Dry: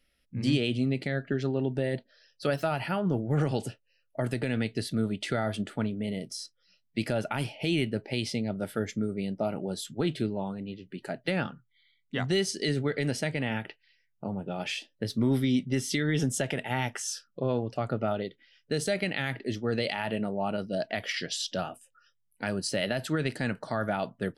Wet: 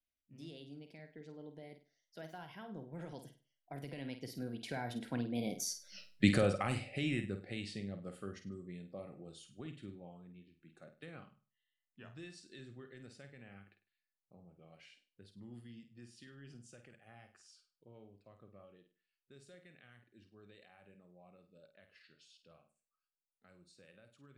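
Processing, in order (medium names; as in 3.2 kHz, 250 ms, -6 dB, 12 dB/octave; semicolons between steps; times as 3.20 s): Doppler pass-by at 5.99 s, 39 m/s, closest 3.3 m; flutter echo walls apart 8.6 m, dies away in 0.34 s; trim +12.5 dB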